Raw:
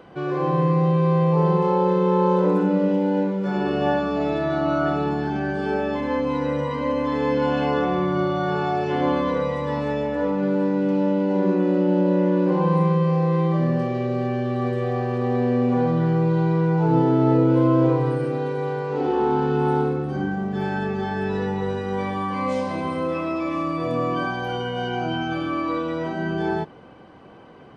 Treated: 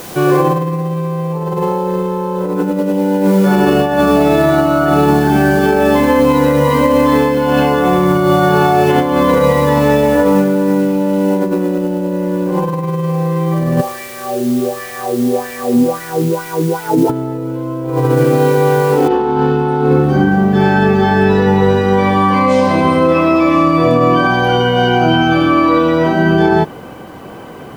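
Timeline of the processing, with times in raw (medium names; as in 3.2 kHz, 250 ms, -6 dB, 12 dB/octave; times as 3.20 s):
13.80–17.09 s: wah-wah 0.94 Hz -> 3.2 Hz 240–2200 Hz, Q 3.3
19.08 s: noise floor step -48 dB -67 dB
whole clip: compressor with a negative ratio -23 dBFS, ratio -0.5; loudness maximiser +13.5 dB; trim -1 dB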